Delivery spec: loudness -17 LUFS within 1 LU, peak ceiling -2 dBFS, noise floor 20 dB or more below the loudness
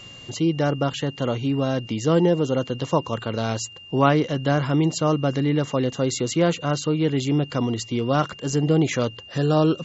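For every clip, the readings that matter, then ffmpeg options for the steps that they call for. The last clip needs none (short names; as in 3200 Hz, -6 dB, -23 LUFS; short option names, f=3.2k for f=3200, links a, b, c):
steady tone 2800 Hz; tone level -41 dBFS; loudness -23.0 LUFS; peak -4.0 dBFS; loudness target -17.0 LUFS
-> -af "bandreject=f=2.8k:w=30"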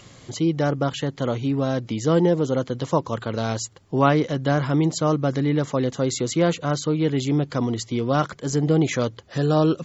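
steady tone none; loudness -23.0 LUFS; peak -3.5 dBFS; loudness target -17.0 LUFS
-> -af "volume=6dB,alimiter=limit=-2dB:level=0:latency=1"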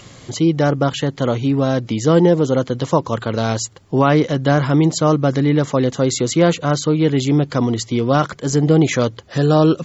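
loudness -17.0 LUFS; peak -2.0 dBFS; noise floor -43 dBFS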